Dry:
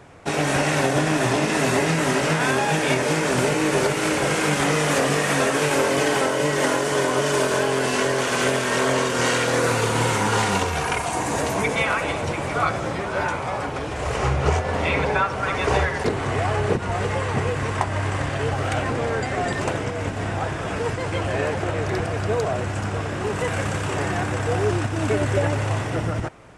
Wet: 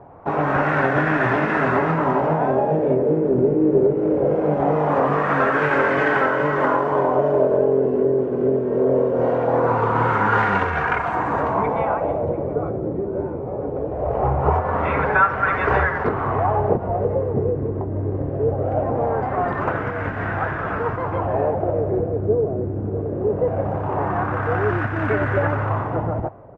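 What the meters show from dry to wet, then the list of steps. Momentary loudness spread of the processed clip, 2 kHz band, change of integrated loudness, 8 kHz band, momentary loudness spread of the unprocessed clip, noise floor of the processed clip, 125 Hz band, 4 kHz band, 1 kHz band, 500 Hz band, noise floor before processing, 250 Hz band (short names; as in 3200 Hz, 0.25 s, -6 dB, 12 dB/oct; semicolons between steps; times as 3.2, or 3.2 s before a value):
7 LU, -0.5 dB, +1.5 dB, under -30 dB, 6 LU, -27 dBFS, +0.5 dB, under -15 dB, +3.0 dB, +3.5 dB, -28 dBFS, +2.0 dB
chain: LFO low-pass sine 0.21 Hz 390–1600 Hz; outdoor echo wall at 100 m, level -26 dB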